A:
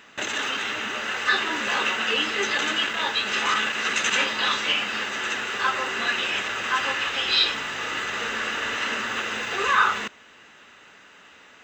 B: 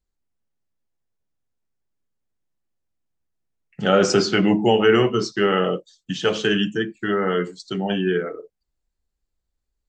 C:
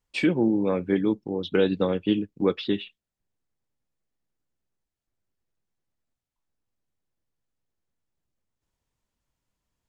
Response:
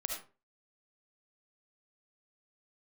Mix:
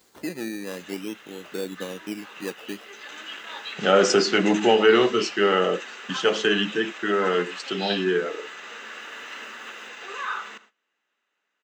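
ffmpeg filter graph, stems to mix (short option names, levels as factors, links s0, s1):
-filter_complex "[0:a]adelay=500,volume=0.282,asplit=2[s0][s1];[s1]volume=0.133[s2];[1:a]acompressor=mode=upward:threshold=0.0501:ratio=2.5,volume=1[s3];[2:a]bass=f=250:g=6,treble=f=4000:g=-12,acrusher=samples=16:mix=1:aa=0.000001:lfo=1:lforange=9.6:lforate=0.48,volume=0.335,asplit=2[s4][s5];[s5]apad=whole_len=535173[s6];[s0][s6]sidechaincompress=threshold=0.0158:ratio=8:attack=32:release=991[s7];[s2]aecho=0:1:76|152|228|304|380|456:1|0.44|0.194|0.0852|0.0375|0.0165[s8];[s7][s3][s4][s8]amix=inputs=4:normalize=0,agate=range=0.141:threshold=0.00251:ratio=16:detection=peak,highpass=270"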